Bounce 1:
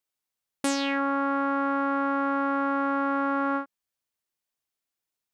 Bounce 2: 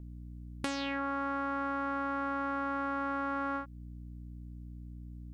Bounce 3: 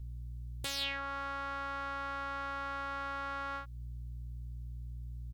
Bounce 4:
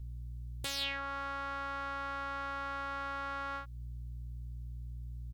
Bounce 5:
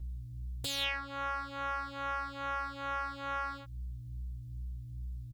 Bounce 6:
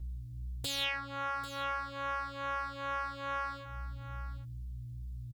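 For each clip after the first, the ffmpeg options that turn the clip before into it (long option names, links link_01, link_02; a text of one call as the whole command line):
ffmpeg -i in.wav -filter_complex "[0:a]aeval=exprs='val(0)+0.00631*(sin(2*PI*60*n/s)+sin(2*PI*2*60*n/s)/2+sin(2*PI*3*60*n/s)/3+sin(2*PI*4*60*n/s)/4+sin(2*PI*5*60*n/s)/5)':channel_layout=same,acrossover=split=980|5200[link_01][link_02][link_03];[link_01]acompressor=threshold=-37dB:ratio=4[link_04];[link_02]acompressor=threshold=-36dB:ratio=4[link_05];[link_03]acompressor=threshold=-56dB:ratio=4[link_06];[link_04][link_05][link_06]amix=inputs=3:normalize=0" out.wav
ffmpeg -i in.wav -af "firequalizer=gain_entry='entry(120,0);entry(220,-22);entry(450,-11);entry(3600,5);entry(5900,3)':delay=0.05:min_phase=1,aeval=exprs='0.0501*(abs(mod(val(0)/0.0501+3,4)-2)-1)':channel_layout=same,volume=3.5dB" out.wav
ffmpeg -i in.wav -af anull out.wav
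ffmpeg -i in.wav -filter_complex "[0:a]asplit=2[link_01][link_02];[link_02]adelay=3.2,afreqshift=2.4[link_03];[link_01][link_03]amix=inputs=2:normalize=1,volume=4.5dB" out.wav
ffmpeg -i in.wav -af "aecho=1:1:792:0.237" out.wav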